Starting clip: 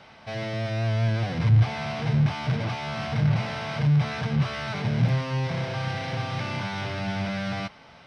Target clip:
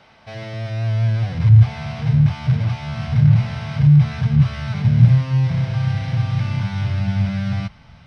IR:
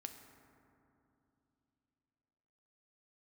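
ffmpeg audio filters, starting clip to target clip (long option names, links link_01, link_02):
-af "asubboost=boost=11.5:cutoff=120,volume=-1dB"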